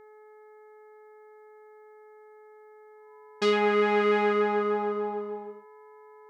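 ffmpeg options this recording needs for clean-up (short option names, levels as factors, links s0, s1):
-af "bandreject=f=427.2:t=h:w=4,bandreject=f=854.4:t=h:w=4,bandreject=f=1281.6:t=h:w=4,bandreject=f=1708.8:t=h:w=4,bandreject=f=2136:t=h:w=4,bandreject=f=1000:w=30"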